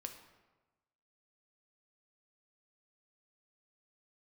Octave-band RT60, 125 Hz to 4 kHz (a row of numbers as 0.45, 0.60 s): 1.3, 1.2, 1.2, 1.2, 1.0, 0.75 s